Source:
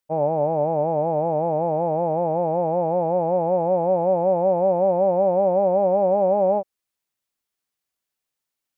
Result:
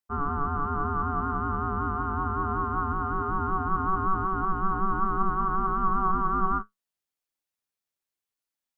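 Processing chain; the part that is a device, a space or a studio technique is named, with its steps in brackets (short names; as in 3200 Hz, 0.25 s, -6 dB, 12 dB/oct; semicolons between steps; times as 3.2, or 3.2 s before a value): alien voice (ring modulator 570 Hz; flange 1.2 Hz, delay 9.5 ms, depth 2 ms, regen +62%); gain +1 dB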